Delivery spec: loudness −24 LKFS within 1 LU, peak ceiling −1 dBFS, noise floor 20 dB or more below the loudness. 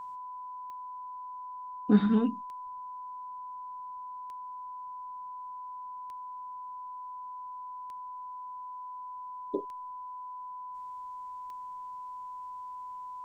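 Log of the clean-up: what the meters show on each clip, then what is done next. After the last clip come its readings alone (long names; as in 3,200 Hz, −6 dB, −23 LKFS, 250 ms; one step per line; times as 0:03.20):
number of clicks 7; interfering tone 1,000 Hz; level of the tone −39 dBFS; integrated loudness −37.0 LKFS; sample peak −11.5 dBFS; target loudness −24.0 LKFS
→ click removal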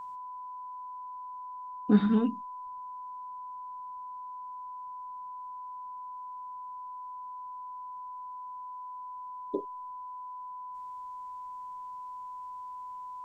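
number of clicks 0; interfering tone 1,000 Hz; level of the tone −39 dBFS
→ notch filter 1,000 Hz, Q 30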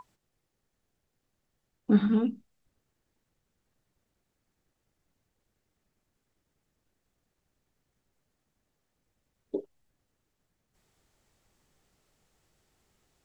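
interfering tone none found; integrated loudness −28.0 LKFS; sample peak −12.0 dBFS; target loudness −24.0 LKFS
→ level +4 dB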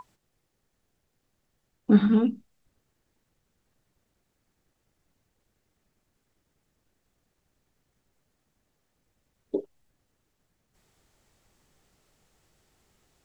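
integrated loudness −24.0 LKFS; sample peak −8.0 dBFS; background noise floor −77 dBFS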